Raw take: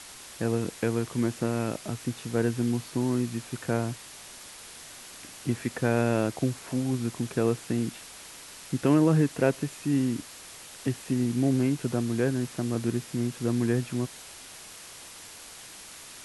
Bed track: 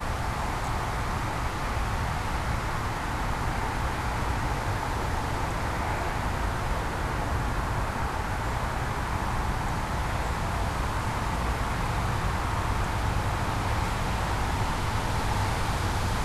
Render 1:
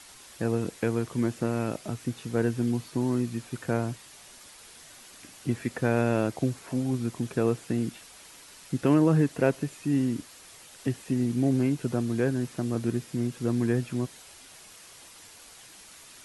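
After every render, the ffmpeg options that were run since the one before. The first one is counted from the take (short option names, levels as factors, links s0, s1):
-af "afftdn=nr=6:nf=-46"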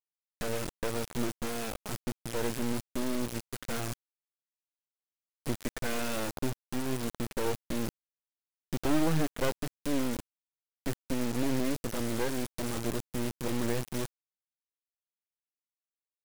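-af "acrusher=bits=3:dc=4:mix=0:aa=0.000001,asoftclip=type=hard:threshold=0.168"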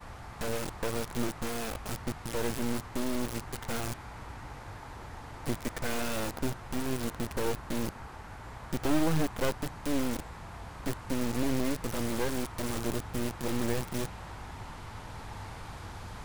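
-filter_complex "[1:a]volume=0.168[s0];[0:a][s0]amix=inputs=2:normalize=0"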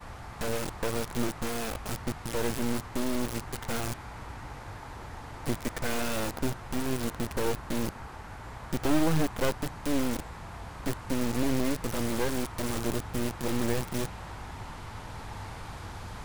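-af "volume=1.26"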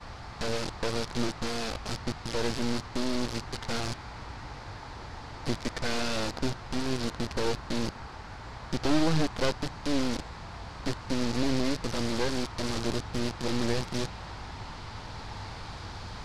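-af "lowpass=6500,equalizer=f=4600:w=1.7:g=8.5"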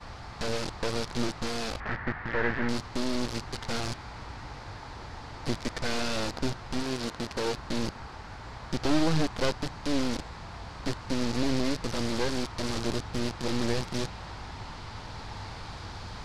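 -filter_complex "[0:a]asettb=1/sr,asplit=3[s0][s1][s2];[s0]atrim=end=1.804[s3];[s1]atrim=start=1.8:end=2.69,asetpts=PTS-STARTPTS,afade=t=in:d=0.004:c=qsin,afade=t=out:st=0.886:d=0.004:c=qsin,lowpass=f=1800:t=q:w=4.8[s4];[s2]atrim=start=2.686[s5];[s3][s4]acrossfade=d=0.004:c1=hsin:c2=qsin[s6];[s6][s5]acrossfade=d=0.004:c1=qsin:c2=hsin,asettb=1/sr,asplit=3[s7][s8][s9];[s7]atrim=end=6.834[s10];[s8]atrim=start=6.83:end=7.58,asetpts=PTS-STARTPTS,afade=t=in:d=0.004:c=qsin,afade=t=out:st=0.746:d=0.004:c=qsin,lowshelf=f=120:g=-8.5[s11];[s9]atrim=start=7.576[s12];[s10][s11]acrossfade=d=0.004:c1=hsin:c2=qsin[s13];[s13][s12]acrossfade=d=0.004:c1=qsin:c2=hsin"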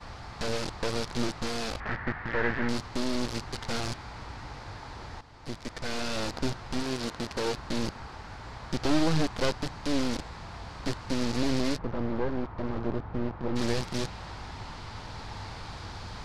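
-filter_complex "[0:a]asplit=3[s0][s1][s2];[s0]afade=t=out:st=11.77:d=0.02[s3];[s1]lowpass=1300,afade=t=in:st=11.77:d=0.02,afade=t=out:st=13.55:d=0.02[s4];[s2]afade=t=in:st=13.55:d=0.02[s5];[s3][s4][s5]amix=inputs=3:normalize=0,asplit=2[s6][s7];[s6]atrim=end=5.21,asetpts=PTS-STARTPTS,afade=t=out:st=5.206:d=0.004:c=hsin:silence=0.237137[s8];[s7]atrim=start=5.21,asetpts=PTS-STARTPTS,afade=t=in:d=1.16:silence=0.237137[s9];[s8][s9]concat=n=2:v=0:a=1"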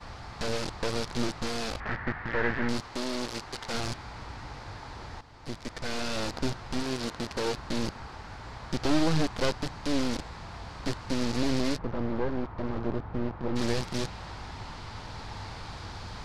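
-filter_complex "[0:a]asettb=1/sr,asplit=3[s0][s1][s2];[s0]atrim=end=2.804[s3];[s1]atrim=start=2.8:end=3.74,asetpts=PTS-STARTPTS,afade=t=in:d=0.004:c=qsin,afade=t=out:st=0.936:d=0.004:c=qsin,bass=f=250:g=-8,treble=f=4000:g=0[s4];[s2]atrim=start=3.736[s5];[s3][s4]acrossfade=d=0.004:c1=hsin:c2=qsin[s6];[s6][s5]acrossfade=d=0.004:c1=qsin:c2=hsin"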